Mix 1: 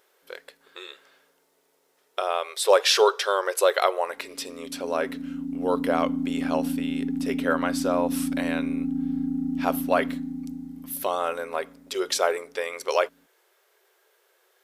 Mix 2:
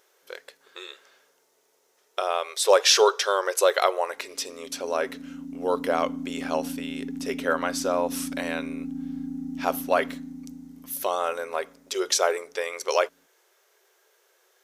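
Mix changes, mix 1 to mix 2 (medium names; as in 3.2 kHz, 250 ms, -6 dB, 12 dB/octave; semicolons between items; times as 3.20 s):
speech: add peaking EQ 6.2 kHz +7 dB 0.49 oct; background -6.0 dB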